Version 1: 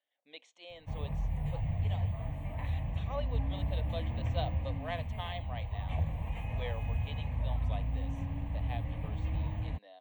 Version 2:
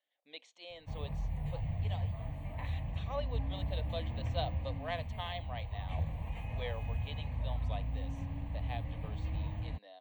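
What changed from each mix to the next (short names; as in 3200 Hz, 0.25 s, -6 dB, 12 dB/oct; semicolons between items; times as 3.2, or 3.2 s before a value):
background -3.0 dB; master: add bell 4500 Hz +6.5 dB 0.38 oct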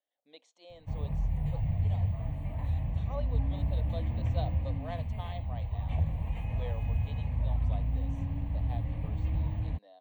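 speech: add bell 2500 Hz -11 dB 1.6 oct; background: add low shelf 430 Hz +6.5 dB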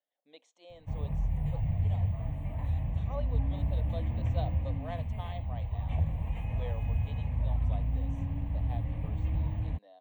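master: add bell 4500 Hz -6.5 dB 0.38 oct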